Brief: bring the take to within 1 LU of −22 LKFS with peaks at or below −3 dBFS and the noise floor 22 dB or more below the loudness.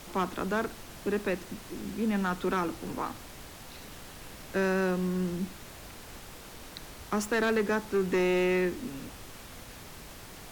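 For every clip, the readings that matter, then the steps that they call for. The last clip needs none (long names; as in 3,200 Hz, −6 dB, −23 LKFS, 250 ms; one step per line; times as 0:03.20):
share of clipped samples 1.2%; peaks flattened at −21.5 dBFS; background noise floor −47 dBFS; target noise floor −53 dBFS; integrated loudness −30.5 LKFS; sample peak −21.5 dBFS; target loudness −22.0 LKFS
→ clipped peaks rebuilt −21.5 dBFS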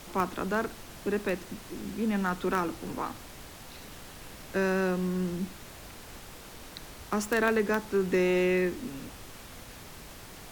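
share of clipped samples 0.0%; background noise floor −47 dBFS; target noise floor −52 dBFS
→ noise reduction from a noise print 6 dB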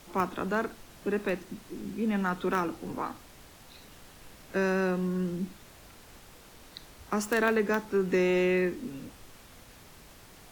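background noise floor −53 dBFS; integrated loudness −30.0 LKFS; sample peak −12.5 dBFS; target loudness −22.0 LKFS
→ level +8 dB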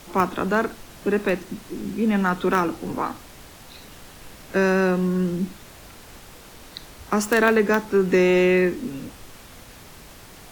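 integrated loudness −22.0 LKFS; sample peak −4.5 dBFS; background noise floor −45 dBFS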